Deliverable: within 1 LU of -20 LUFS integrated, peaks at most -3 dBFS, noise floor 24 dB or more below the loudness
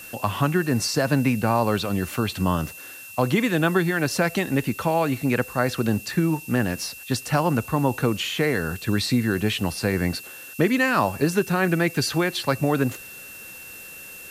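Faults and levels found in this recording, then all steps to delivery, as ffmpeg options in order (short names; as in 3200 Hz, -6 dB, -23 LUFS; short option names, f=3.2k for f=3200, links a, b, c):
steady tone 2700 Hz; tone level -41 dBFS; noise floor -41 dBFS; noise floor target -48 dBFS; loudness -23.5 LUFS; peak -7.0 dBFS; loudness target -20.0 LUFS
-> -af "bandreject=f=2.7k:w=30"
-af "afftdn=nr=7:nf=-41"
-af "volume=3.5dB"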